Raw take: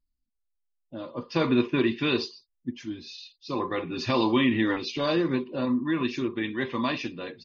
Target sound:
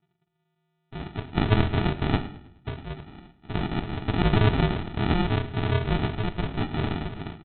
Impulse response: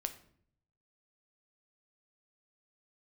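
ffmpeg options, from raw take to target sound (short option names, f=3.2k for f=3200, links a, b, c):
-filter_complex "[0:a]equalizer=f=430:t=o:w=0.34:g=-6,bandreject=f=60:t=h:w=6,bandreject=f=120:t=h:w=6,bandreject=f=180:t=h:w=6,bandreject=f=240:t=h:w=6,bandreject=f=300:t=h:w=6,bandreject=f=360:t=h:w=6,bandreject=f=420:t=h:w=6,bandreject=f=480:t=h:w=6,bandreject=f=540:t=h:w=6,bandreject=f=600:t=h:w=6,aeval=exprs='val(0)*sin(2*PI*160*n/s)':c=same,aresample=8000,acrusher=samples=15:mix=1:aa=0.000001,aresample=44100,aecho=1:1:105|210|315|420:0.126|0.0567|0.0255|0.0115,asplit=2[a][b];[1:a]atrim=start_sample=2205,lowshelf=f=77:g=-9.5[c];[b][c]afir=irnorm=-1:irlink=0,volume=3.5dB[d];[a][d]amix=inputs=2:normalize=0"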